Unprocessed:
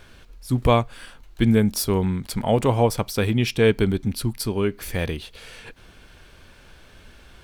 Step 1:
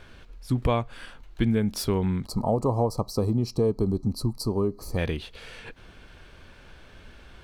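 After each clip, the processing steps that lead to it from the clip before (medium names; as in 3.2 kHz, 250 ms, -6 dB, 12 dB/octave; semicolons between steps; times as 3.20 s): time-frequency box 2.26–4.98 s, 1.3–3.9 kHz -23 dB; treble shelf 6.7 kHz -11.5 dB; compression 3:1, threshold -21 dBFS, peak gain reduction 7.5 dB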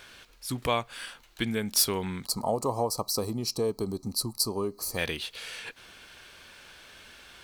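tilt EQ +3.5 dB/octave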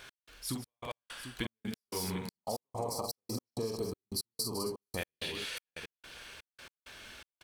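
on a send: multi-tap echo 44/151/200/261/744 ms -4.5/-12/-8.5/-12.5/-13 dB; on the sum: compression, threshold -30 dBFS, peak gain reduction 11.5 dB; trance gate "x..xxxx.." 164 bpm -60 dB; trim -2 dB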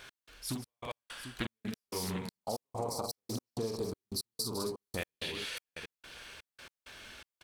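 loudspeaker Doppler distortion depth 0.24 ms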